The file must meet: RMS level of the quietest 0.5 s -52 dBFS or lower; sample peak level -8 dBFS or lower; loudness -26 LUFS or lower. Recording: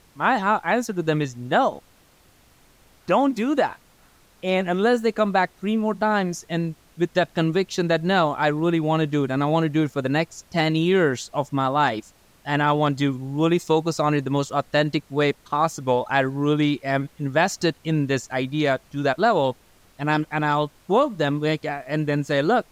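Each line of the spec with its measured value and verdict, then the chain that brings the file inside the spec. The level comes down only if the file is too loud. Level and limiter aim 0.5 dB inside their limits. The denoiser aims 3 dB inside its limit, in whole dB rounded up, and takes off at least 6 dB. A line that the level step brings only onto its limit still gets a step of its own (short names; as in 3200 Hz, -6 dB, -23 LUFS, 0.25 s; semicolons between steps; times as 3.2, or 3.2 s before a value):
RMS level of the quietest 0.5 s -56 dBFS: OK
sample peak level -5.5 dBFS: fail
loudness -22.5 LUFS: fail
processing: gain -4 dB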